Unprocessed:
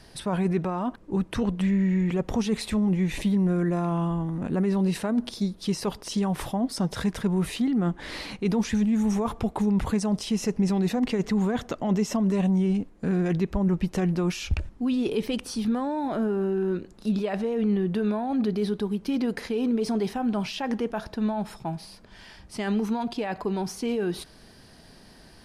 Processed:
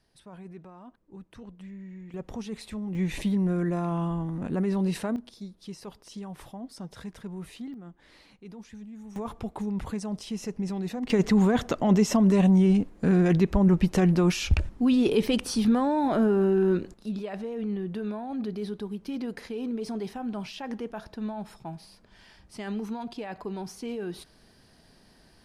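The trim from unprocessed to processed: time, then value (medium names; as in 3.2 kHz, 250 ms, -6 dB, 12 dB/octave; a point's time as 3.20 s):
-19.5 dB
from 2.14 s -10.5 dB
from 2.95 s -2.5 dB
from 5.16 s -13.5 dB
from 7.74 s -20 dB
from 9.16 s -7.5 dB
from 11.10 s +3.5 dB
from 16.94 s -7 dB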